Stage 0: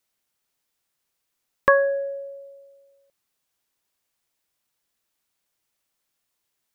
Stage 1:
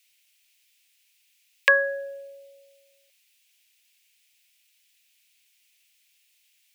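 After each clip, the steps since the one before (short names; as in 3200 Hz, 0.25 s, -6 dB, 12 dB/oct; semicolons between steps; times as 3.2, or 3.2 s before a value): inverse Chebyshev high-pass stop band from 280 Hz, stop band 40 dB; resonant high shelf 1700 Hz +13 dB, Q 3; gain -2 dB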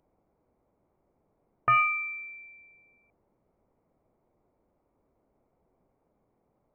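added harmonics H 4 -22 dB, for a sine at -1 dBFS; overloaded stage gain 19.5 dB; inverted band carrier 2900 Hz; gain +1 dB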